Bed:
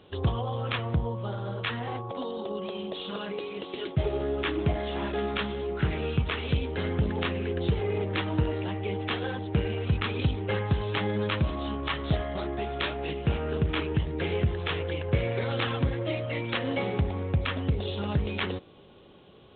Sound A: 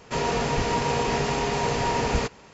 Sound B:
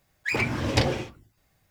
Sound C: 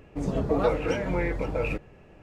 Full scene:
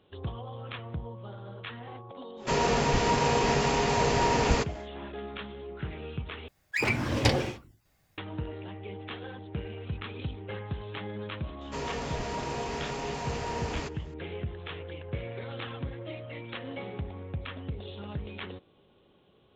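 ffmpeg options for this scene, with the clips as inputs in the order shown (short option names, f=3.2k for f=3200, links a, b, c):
-filter_complex "[1:a]asplit=2[a][b];[0:a]volume=-9.5dB[c];[b]asoftclip=type=tanh:threshold=-17dB[d];[c]asplit=2[e][f];[e]atrim=end=6.484[g];[2:a]atrim=end=1.7,asetpts=PTS-STARTPTS,volume=-1.5dB[h];[f]atrim=start=8.176[i];[a]atrim=end=2.53,asetpts=PTS-STARTPTS,volume=-0.5dB,afade=t=in:d=0.1,afade=t=out:st=2.43:d=0.1,adelay=2360[j];[d]atrim=end=2.53,asetpts=PTS-STARTPTS,volume=-9dB,afade=t=in:d=0.004:c=hsin,afade=t=out:st=2.526:d=0.004:c=hsin,adelay=11610[k];[g][h]acrossfade=d=0.004:c1=hsin:c2=hsin[l];[l][i]acrossfade=d=0.004:c1=hsin:c2=hsin[m];[m][j][k]amix=inputs=3:normalize=0"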